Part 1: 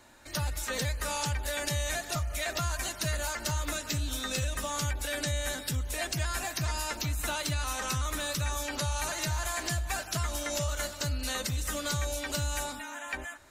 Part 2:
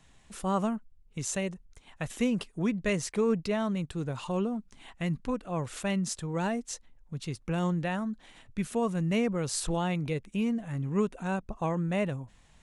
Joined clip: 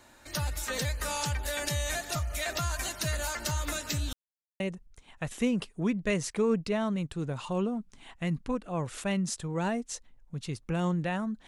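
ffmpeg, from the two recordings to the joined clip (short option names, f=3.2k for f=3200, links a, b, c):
-filter_complex "[0:a]apad=whole_dur=11.47,atrim=end=11.47,asplit=2[a][b];[a]atrim=end=4.13,asetpts=PTS-STARTPTS,afade=t=out:st=4.126:d=0.004:c=hsin[c];[b]atrim=start=4.13:end=4.6,asetpts=PTS-STARTPTS,volume=0[d];[1:a]atrim=start=1.39:end=8.26,asetpts=PTS-STARTPTS,afade=t=in:d=0.004:c=hsin[e];[c][d][e]concat=n=3:v=0:a=1"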